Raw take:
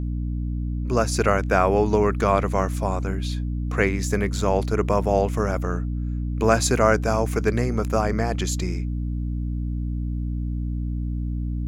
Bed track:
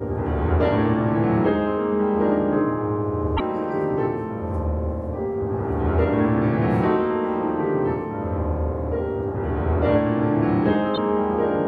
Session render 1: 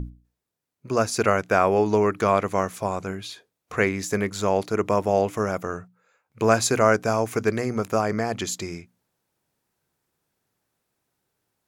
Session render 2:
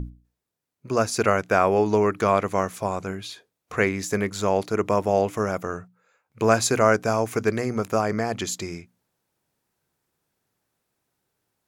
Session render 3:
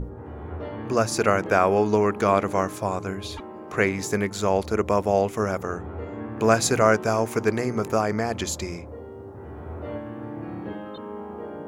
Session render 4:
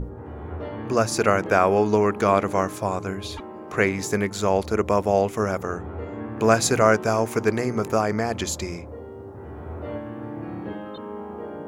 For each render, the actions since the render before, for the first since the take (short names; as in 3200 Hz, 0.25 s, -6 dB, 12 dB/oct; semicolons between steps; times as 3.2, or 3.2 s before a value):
notches 60/120/180/240/300 Hz
nothing audible
add bed track -14.5 dB
gain +1 dB